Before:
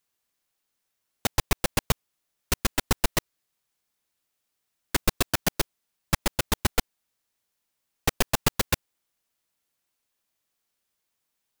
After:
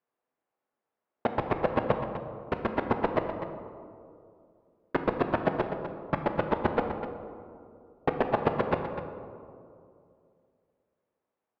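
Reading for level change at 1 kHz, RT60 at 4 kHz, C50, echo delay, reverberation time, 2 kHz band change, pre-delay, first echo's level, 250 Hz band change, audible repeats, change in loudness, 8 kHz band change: +3.5 dB, 1.0 s, 5.5 dB, 0.25 s, 2.5 s, -5.0 dB, 3 ms, -10.0 dB, +2.0 dB, 1, -3.0 dB, under -40 dB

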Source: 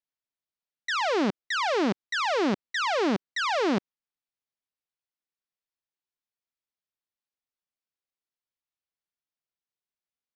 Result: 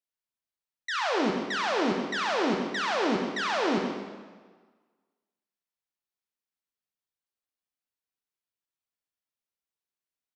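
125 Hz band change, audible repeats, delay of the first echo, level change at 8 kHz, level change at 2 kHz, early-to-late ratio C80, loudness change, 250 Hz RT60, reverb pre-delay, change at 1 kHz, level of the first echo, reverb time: -1.5 dB, 1, 0.129 s, -1.0 dB, -1.0 dB, 4.0 dB, -1.0 dB, 1.4 s, 17 ms, -1.0 dB, -10.0 dB, 1.5 s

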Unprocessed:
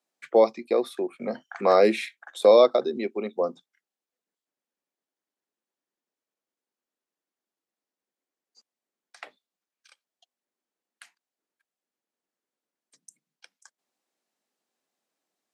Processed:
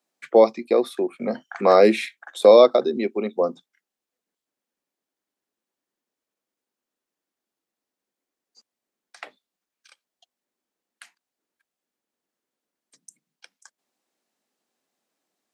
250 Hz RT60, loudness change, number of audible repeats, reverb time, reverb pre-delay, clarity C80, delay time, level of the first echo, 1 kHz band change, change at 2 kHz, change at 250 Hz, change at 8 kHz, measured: none, +4.0 dB, none, none, none, none, none, none, +3.5 dB, +3.5 dB, +5.5 dB, n/a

